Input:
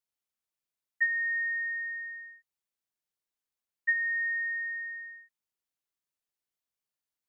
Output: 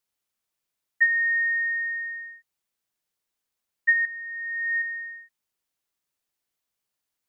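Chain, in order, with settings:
0:04.05–0:04.82: compressor whose output falls as the input rises −36 dBFS, ratio −0.5
level +7 dB

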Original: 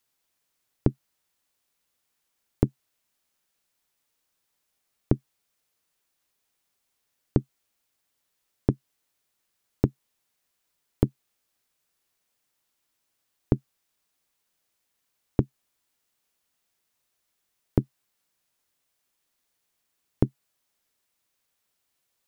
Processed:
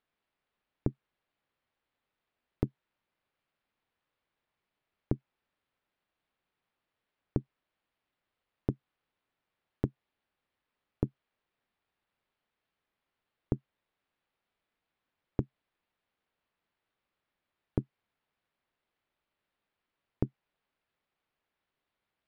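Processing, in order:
linearly interpolated sample-rate reduction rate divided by 6×
level −8.5 dB

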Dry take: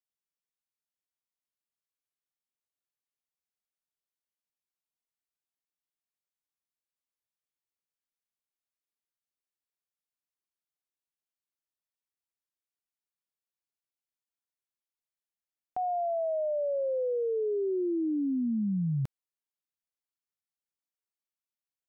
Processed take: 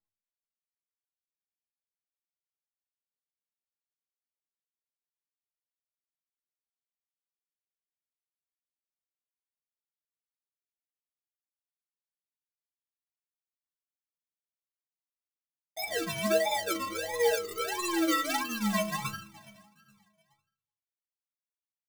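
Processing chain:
variable-slope delta modulation 16 kbit/s
low-pass that shuts in the quiet parts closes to 300 Hz, open at −28 dBFS
on a send: repeating echo 419 ms, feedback 38%, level −20.5 dB
on the sum: rectangular room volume 280 cubic metres, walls furnished, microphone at 3 metres
sample-and-hold swept by an LFO 42×, swing 60% 1.5 Hz
stiff-string resonator 97 Hz, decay 0.53 s, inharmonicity 0.03
noise that follows the level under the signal 23 dB
low-shelf EQ 280 Hz −10 dB
level +8.5 dB

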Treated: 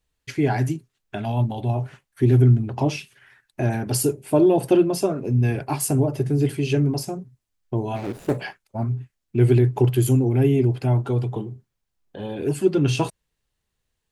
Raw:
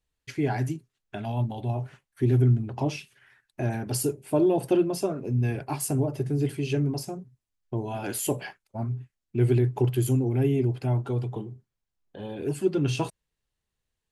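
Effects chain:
0:07.96–0:08.38: running median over 41 samples
level +5.5 dB

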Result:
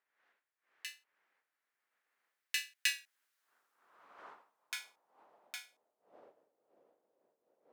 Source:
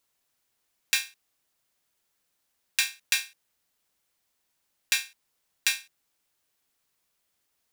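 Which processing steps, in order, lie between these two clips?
source passing by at 0:03.26, 31 m/s, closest 13 metres
wind on the microphone 380 Hz −52 dBFS
high-pass filter sweep 1,800 Hz → 520 Hz, 0:02.84–0:06.59
level −7 dB

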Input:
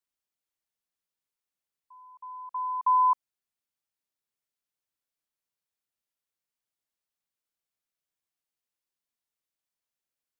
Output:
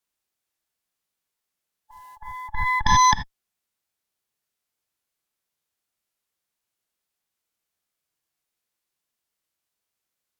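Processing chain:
harmonic generator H 6 −7 dB, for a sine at −17.5 dBFS
reverb whose tail is shaped and stops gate 110 ms flat, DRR 7.5 dB
formants moved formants −3 semitones
level +6 dB

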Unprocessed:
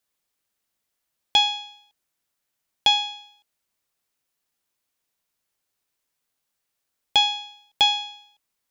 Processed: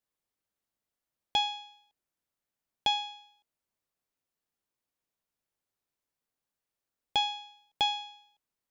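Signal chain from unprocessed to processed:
tilt shelving filter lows +4 dB, about 1,300 Hz
level −8 dB

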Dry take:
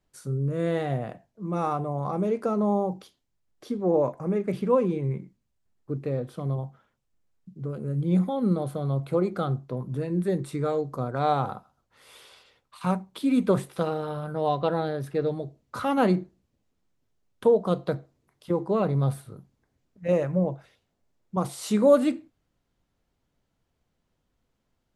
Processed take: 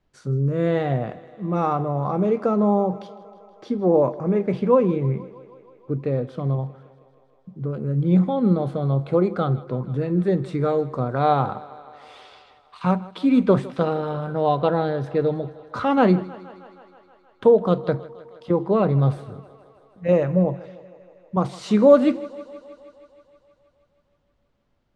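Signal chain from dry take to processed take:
high-frequency loss of the air 130 metres
feedback echo with a high-pass in the loop 158 ms, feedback 74%, high-pass 190 Hz, level −19 dB
level +5.5 dB

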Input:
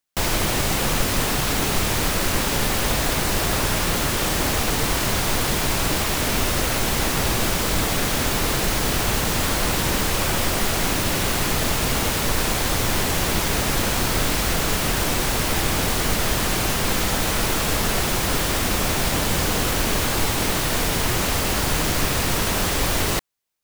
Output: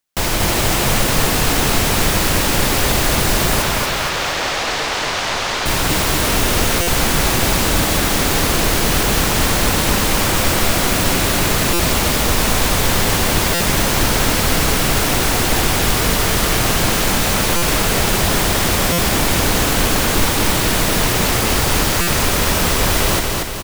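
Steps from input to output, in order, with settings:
0:03.62–0:05.66: three-way crossover with the lows and the highs turned down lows −14 dB, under 450 Hz, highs −22 dB, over 6,500 Hz
repeating echo 235 ms, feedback 52%, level −3 dB
buffer that repeats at 0:06.81/0:11.73/0:13.54/0:17.56/0:18.92/0:22.01, samples 256, times 10
level +3.5 dB

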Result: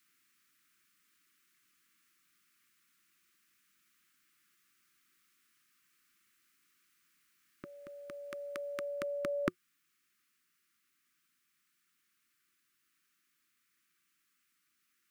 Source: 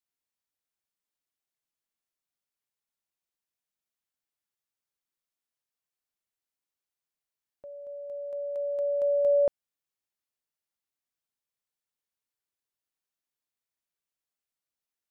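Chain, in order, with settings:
drawn EQ curve 100 Hz 0 dB, 170 Hz +10 dB, 360 Hz +10 dB, 520 Hz −19 dB, 860 Hz −14 dB, 1,200 Hz +14 dB, 2,300 Hz +14 dB, 3,500 Hz +8 dB
in parallel at −2 dB: speech leveller within 5 dB 0.5 s
on the sum: level +1 dB

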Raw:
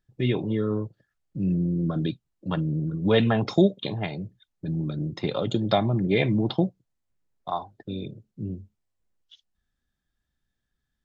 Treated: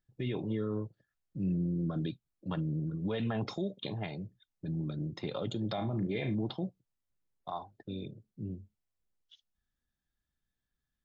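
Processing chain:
0:05.74–0:06.35: flutter between parallel walls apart 6.2 metres, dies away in 0.22 s
brickwall limiter −18.5 dBFS, peak gain reduction 11.5 dB
level −7 dB

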